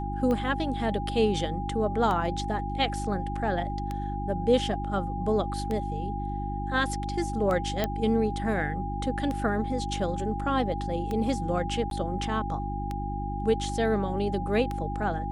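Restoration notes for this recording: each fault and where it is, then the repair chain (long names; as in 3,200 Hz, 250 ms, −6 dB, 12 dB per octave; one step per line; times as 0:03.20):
mains hum 50 Hz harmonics 7 −33 dBFS
scratch tick 33 1/3 rpm −19 dBFS
whistle 810 Hz −34 dBFS
0:07.84: click −12 dBFS
0:11.90–0:11.91: drop-out 12 ms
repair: click removal
notch filter 810 Hz, Q 30
hum removal 50 Hz, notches 7
repair the gap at 0:11.90, 12 ms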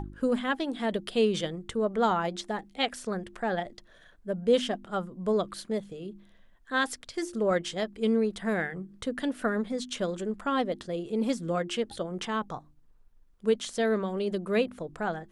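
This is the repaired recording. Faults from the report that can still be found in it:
none of them is left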